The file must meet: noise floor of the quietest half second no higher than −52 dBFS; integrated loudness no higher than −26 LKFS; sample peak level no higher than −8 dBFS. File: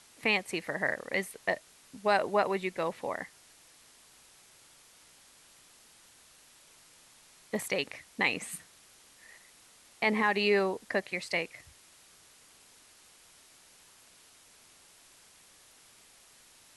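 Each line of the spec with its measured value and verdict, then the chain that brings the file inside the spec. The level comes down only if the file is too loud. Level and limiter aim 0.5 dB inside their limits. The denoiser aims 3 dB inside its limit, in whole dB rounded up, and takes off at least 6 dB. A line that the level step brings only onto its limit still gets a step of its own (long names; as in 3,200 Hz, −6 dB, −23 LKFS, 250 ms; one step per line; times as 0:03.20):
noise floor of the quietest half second −59 dBFS: in spec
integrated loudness −31.0 LKFS: in spec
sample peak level −13.0 dBFS: in spec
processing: no processing needed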